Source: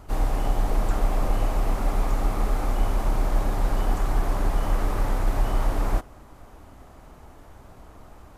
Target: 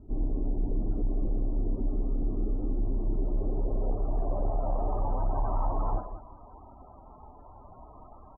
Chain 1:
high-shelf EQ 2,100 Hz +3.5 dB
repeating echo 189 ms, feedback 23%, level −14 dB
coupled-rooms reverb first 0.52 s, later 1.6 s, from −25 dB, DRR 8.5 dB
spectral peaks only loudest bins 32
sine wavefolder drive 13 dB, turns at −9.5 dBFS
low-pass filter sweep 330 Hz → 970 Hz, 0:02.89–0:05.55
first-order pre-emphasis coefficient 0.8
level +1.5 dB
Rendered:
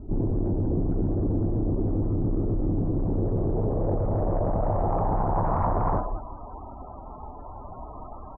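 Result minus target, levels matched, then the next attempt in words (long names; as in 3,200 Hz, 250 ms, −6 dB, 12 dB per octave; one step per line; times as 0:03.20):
sine wavefolder: distortion +27 dB
high-shelf EQ 2,100 Hz +3.5 dB
repeating echo 189 ms, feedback 23%, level −14 dB
coupled-rooms reverb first 0.52 s, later 1.6 s, from −25 dB, DRR 8.5 dB
spectral peaks only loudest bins 32
sine wavefolder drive 3 dB, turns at −9.5 dBFS
low-pass filter sweep 330 Hz → 970 Hz, 0:02.89–0:05.55
first-order pre-emphasis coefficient 0.8
level +1.5 dB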